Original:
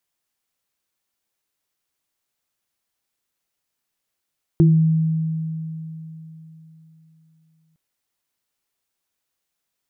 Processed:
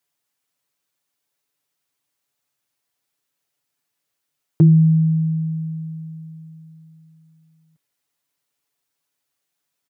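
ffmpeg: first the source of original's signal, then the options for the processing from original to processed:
-f lavfi -i "aevalsrc='0.335*pow(10,-3*t/3.67)*sin(2*PI*160*t)+0.224*pow(10,-3*t/0.31)*sin(2*PI*334*t)':d=3.16:s=44100"
-af "highpass=69,aecho=1:1:7:0.65"

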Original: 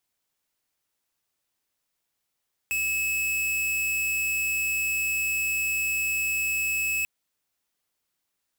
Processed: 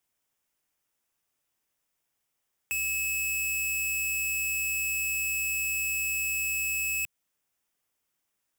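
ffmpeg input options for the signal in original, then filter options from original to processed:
-f lavfi -i "aevalsrc='0.0473*(2*lt(mod(2590*t,1),0.5)-1)':d=4.34:s=44100"
-filter_complex "[0:a]equalizer=f=4.2k:t=o:w=0.33:g=-7.5,acrossover=split=170|3000[a][b][c];[b]acompressor=threshold=-40dB:ratio=2.5[d];[a][d][c]amix=inputs=3:normalize=0"

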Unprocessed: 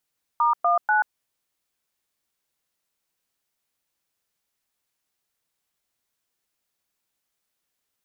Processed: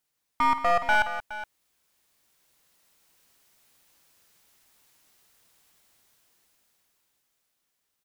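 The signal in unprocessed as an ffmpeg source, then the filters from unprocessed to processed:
-f lavfi -i "aevalsrc='0.106*clip(min(mod(t,0.244),0.134-mod(t,0.244))/0.002,0,1)*(eq(floor(t/0.244),0)*(sin(2*PI*941*mod(t,0.244))+sin(2*PI*1209*mod(t,0.244)))+eq(floor(t/0.244),1)*(sin(2*PI*697*mod(t,0.244))+sin(2*PI*1209*mod(t,0.244)))+eq(floor(t/0.244),2)*(sin(2*PI*852*mod(t,0.244))+sin(2*PI*1477*mod(t,0.244))))':d=0.732:s=44100"
-af "dynaudnorm=f=220:g=17:m=15.5dB,aeval=exprs='clip(val(0),-1,0.0531)':c=same,aecho=1:1:49|50|180|417:0.133|0.224|0.211|0.188"

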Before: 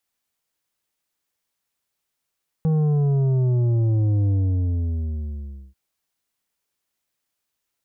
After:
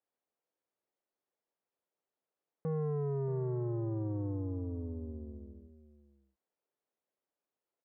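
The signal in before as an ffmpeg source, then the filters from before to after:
-f lavfi -i "aevalsrc='0.133*clip((3.09-t)/1.46,0,1)*tanh(2.51*sin(2*PI*160*3.09/log(65/160)*(exp(log(65/160)*t/3.09)-1)))/tanh(2.51)':d=3.09:s=44100"
-af "bandpass=f=480:t=q:w=1.3:csg=0,asoftclip=type=tanh:threshold=-28.5dB,aecho=1:1:628:0.178"

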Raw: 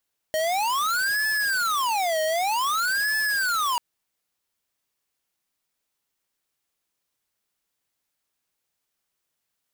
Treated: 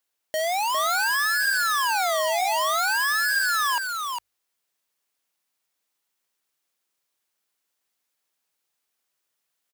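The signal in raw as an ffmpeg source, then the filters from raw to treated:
-f lavfi -i "aevalsrc='0.0631*(2*lt(mod((1178*t-552/(2*PI*0.53)*sin(2*PI*0.53*t)),1),0.5)-1)':d=3.44:s=44100"
-filter_complex "[0:a]lowshelf=f=180:g=-11.5,bandreject=f=50:t=h:w=6,bandreject=f=100:t=h:w=6,asplit=2[a][b];[b]aecho=0:1:405:0.562[c];[a][c]amix=inputs=2:normalize=0"

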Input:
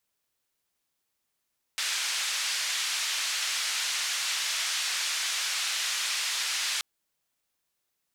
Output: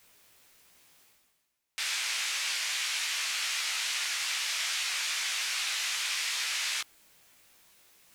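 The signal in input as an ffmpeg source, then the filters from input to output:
-f lavfi -i "anoisesrc=c=white:d=5.03:r=44100:seed=1,highpass=f=1600,lowpass=f=6000,volume=-18.4dB"
-af "flanger=delay=15.5:depth=4.1:speed=2.5,equalizer=f=2.3k:w=2.3:g=3.5,areverse,acompressor=mode=upward:threshold=-42dB:ratio=2.5,areverse"

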